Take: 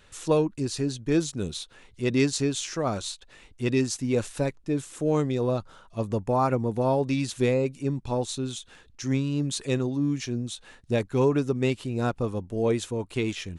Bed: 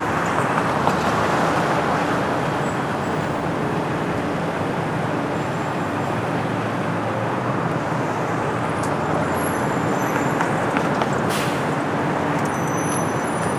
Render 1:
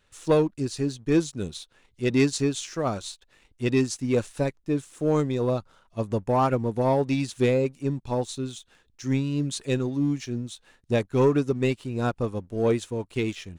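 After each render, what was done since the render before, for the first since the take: waveshaping leveller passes 1; upward expansion 1.5:1, over -33 dBFS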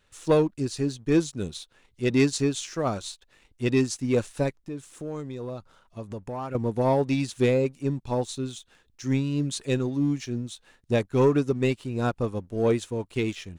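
4.61–6.55 s: compression 2.5:1, threshold -36 dBFS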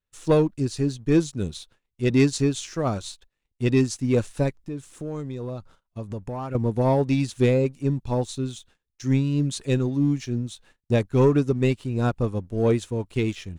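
gate -53 dBFS, range -24 dB; bass shelf 190 Hz +7.5 dB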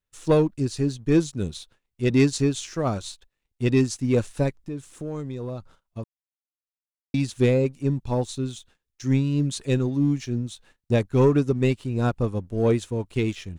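6.04–7.14 s: mute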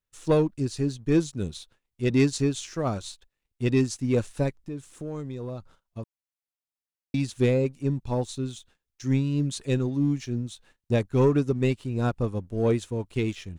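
trim -2.5 dB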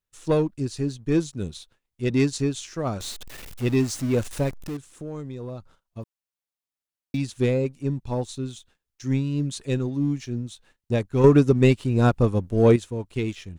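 3.00–4.77 s: jump at every zero crossing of -33 dBFS; 6.01–7.18 s: block-companded coder 7-bit; 11.24–12.76 s: gain +7 dB

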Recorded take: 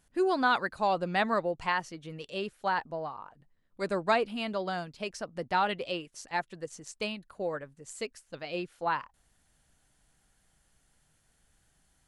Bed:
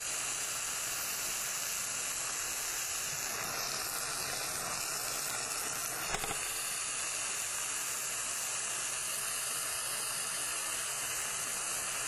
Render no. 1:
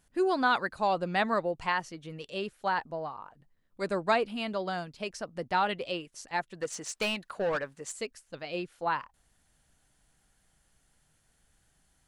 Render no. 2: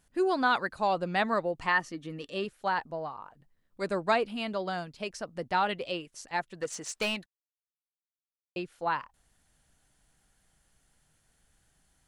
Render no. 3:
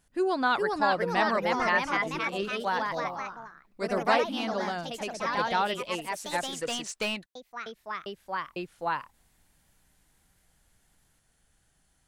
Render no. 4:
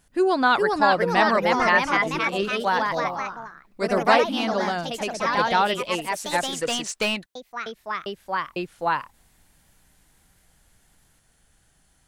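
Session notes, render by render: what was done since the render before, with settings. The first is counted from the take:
6.61–7.92 s: overdrive pedal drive 19 dB, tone 5 kHz, clips at -22 dBFS
1.58–2.45 s: small resonant body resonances 280/1200/1800 Hz, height 10 dB; 7.26–8.56 s: mute
ever faster or slower copies 433 ms, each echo +2 st, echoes 3
trim +6.5 dB

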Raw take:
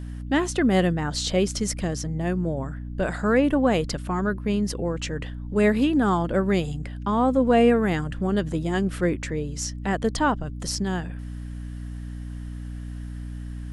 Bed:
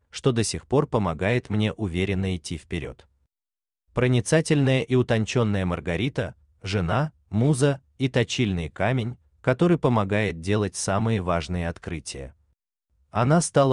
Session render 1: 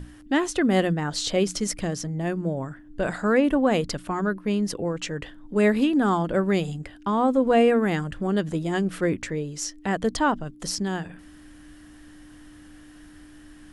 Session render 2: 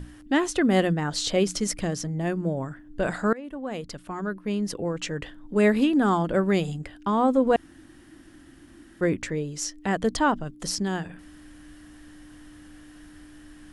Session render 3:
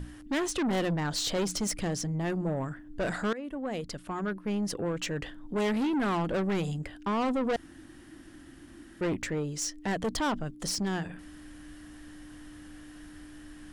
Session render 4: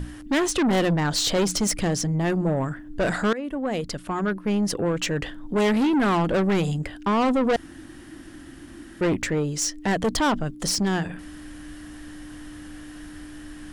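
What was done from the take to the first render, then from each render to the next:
hum notches 60/120/180/240 Hz
3.33–5.12 s: fade in, from -22.5 dB; 7.56–9.01 s: room tone
saturation -25.5 dBFS, distortion -7 dB
trim +7.5 dB

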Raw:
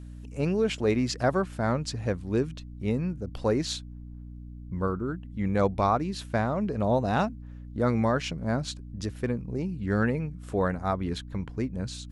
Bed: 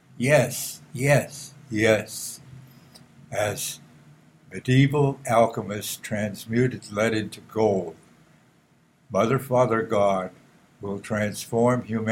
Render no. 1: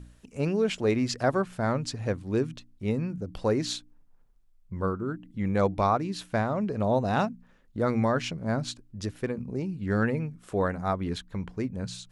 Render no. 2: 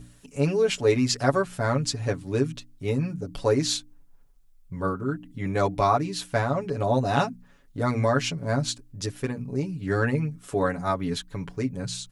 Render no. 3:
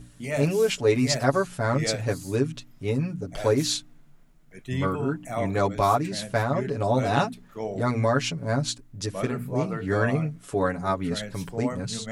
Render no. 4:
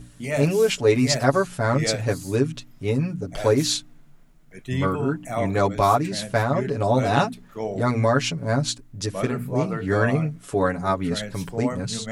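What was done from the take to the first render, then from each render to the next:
de-hum 60 Hz, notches 5
treble shelf 4.8 kHz +8.5 dB; comb 7.1 ms, depth 90%
add bed -11 dB
trim +3 dB

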